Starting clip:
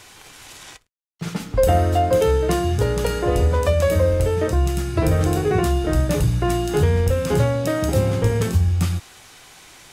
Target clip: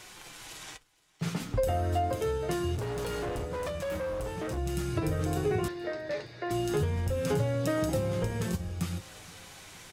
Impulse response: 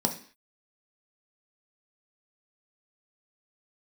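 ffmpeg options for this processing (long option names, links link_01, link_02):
-filter_complex "[0:a]acompressor=threshold=-22dB:ratio=6,flanger=delay=5.4:depth=3.3:regen=-34:speed=0.24:shape=triangular,asettb=1/sr,asplit=3[link_01][link_02][link_03];[link_01]atrim=end=2.754[link_04];[link_02]atrim=start=2.75:end=4.58,asetpts=PTS-STARTPTS,afade=type=in:duration=0.004:curve=qsin,afade=type=out:start_time=1.826:duration=0.004:curve=qsin,asoftclip=type=hard:threshold=-31dB[link_05];[link_03]atrim=start=4.576[link_06];[link_04][link_05]acrossfade=duration=0.004:curve1=hsin:curve2=qsin[link_07];[link_07][link_06]acrossfade=duration=0.004:curve1=qsin:curve2=hsin,asettb=1/sr,asplit=3[link_08][link_09][link_10];[link_08]atrim=end=5.684[link_11];[link_09]atrim=start=5.68:end=6.51,asetpts=PTS-STARTPTS,afade=type=in:duration=0.004:curve=qsin,afade=type=out:start_time=0.826:duration=0.004:curve=qsin,highpass=430,equalizer=frequency=550:width_type=q:width=4:gain=4,equalizer=frequency=780:width_type=q:width=4:gain=-4,equalizer=frequency=1200:width_type=q:width=4:gain=-7,equalizer=frequency=1900:width_type=q:width=4:gain=8,equalizer=frequency=3000:width_type=q:width=4:gain=-8,equalizer=frequency=4500:width_type=q:width=4:gain=6,lowpass=frequency=4600:width=0.5412,lowpass=frequency=4600:width=1.3066[link_12];[link_10]atrim=start=6.506[link_13];[link_11][link_12]acrossfade=duration=0.004:curve1=hsin:curve2=qsin[link_14];[link_14][link_13]acrossfade=duration=0.004:curve1=qsin:curve2=hsin,aecho=1:1:467|934|1401|1868:0.0631|0.0366|0.0212|0.0123"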